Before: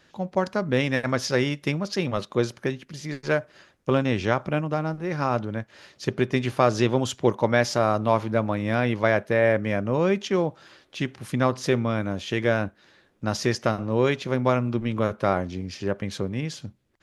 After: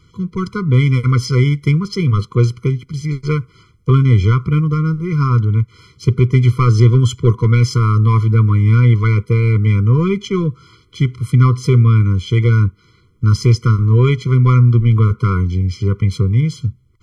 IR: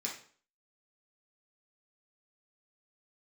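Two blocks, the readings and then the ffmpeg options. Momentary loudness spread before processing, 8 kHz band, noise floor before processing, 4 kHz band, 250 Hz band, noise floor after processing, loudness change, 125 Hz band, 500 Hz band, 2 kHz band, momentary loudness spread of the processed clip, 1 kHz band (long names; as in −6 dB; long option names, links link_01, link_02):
10 LU, can't be measured, −61 dBFS, +3.5 dB, +7.0 dB, −52 dBFS, +10.5 dB, +19.0 dB, 0.0 dB, +0.5 dB, 9 LU, +2.0 dB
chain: -af "acontrast=75,lowshelf=frequency=170:width_type=q:width=1.5:gain=11.5,afftfilt=real='re*eq(mod(floor(b*sr/1024/490),2),0)':imag='im*eq(mod(floor(b*sr/1024/490),2),0)':win_size=1024:overlap=0.75"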